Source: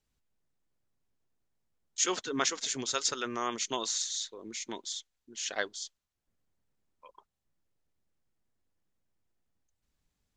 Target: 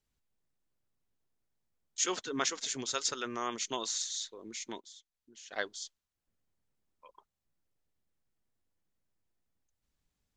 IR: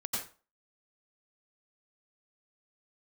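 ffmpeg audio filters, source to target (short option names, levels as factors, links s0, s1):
-filter_complex "[0:a]asplit=3[s0][s1][s2];[s0]afade=t=out:st=4.79:d=0.02[s3];[s1]acompressor=threshold=0.00112:ratio=2,afade=t=in:st=4.79:d=0.02,afade=t=out:st=5.51:d=0.02[s4];[s2]afade=t=in:st=5.51:d=0.02[s5];[s3][s4][s5]amix=inputs=3:normalize=0,volume=0.75"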